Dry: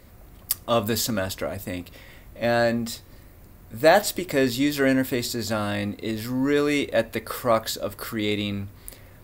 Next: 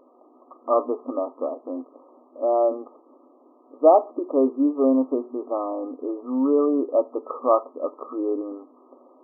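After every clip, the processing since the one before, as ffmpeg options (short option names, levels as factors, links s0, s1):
-af "afftfilt=real='re*between(b*sr/4096,240,1300)':imag='im*between(b*sr/4096,240,1300)':win_size=4096:overlap=0.75,volume=1.33"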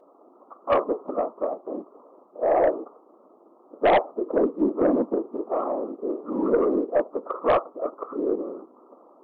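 -af "afftfilt=real='hypot(re,im)*cos(2*PI*random(0))':imag='hypot(re,im)*sin(2*PI*random(1))':win_size=512:overlap=0.75,highpass=f=270:w=0.5412,highpass=f=270:w=1.3066,aeval=exprs='0.335*(cos(1*acos(clip(val(0)/0.335,-1,1)))-cos(1*PI/2))+0.015*(cos(4*acos(clip(val(0)/0.335,-1,1)))-cos(4*PI/2))+0.0841*(cos(5*acos(clip(val(0)/0.335,-1,1)))-cos(5*PI/2))':c=same"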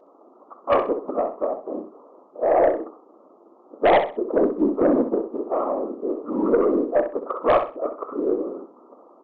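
-filter_complex "[0:a]asplit=2[s0][s1];[s1]aecho=0:1:64|128|192:0.355|0.0887|0.0222[s2];[s0][s2]amix=inputs=2:normalize=0,aresample=16000,aresample=44100,volume=1.26"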